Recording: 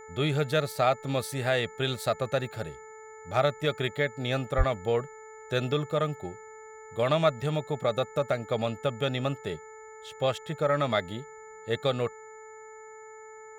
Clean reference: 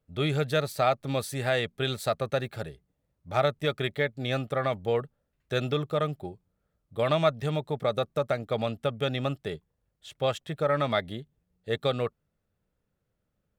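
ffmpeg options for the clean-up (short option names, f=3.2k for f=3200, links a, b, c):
-filter_complex "[0:a]bandreject=f=436.8:t=h:w=4,bandreject=f=873.6:t=h:w=4,bandreject=f=1.3104k:t=h:w=4,bandreject=f=1.7472k:t=h:w=4,bandreject=f=2.184k:t=h:w=4,bandreject=f=7k:w=30,asplit=3[a][b][c];[a]afade=t=out:st=4.57:d=0.02[d];[b]highpass=f=140:w=0.5412,highpass=f=140:w=1.3066,afade=t=in:st=4.57:d=0.02,afade=t=out:st=4.69:d=0.02[e];[c]afade=t=in:st=4.69:d=0.02[f];[d][e][f]amix=inputs=3:normalize=0"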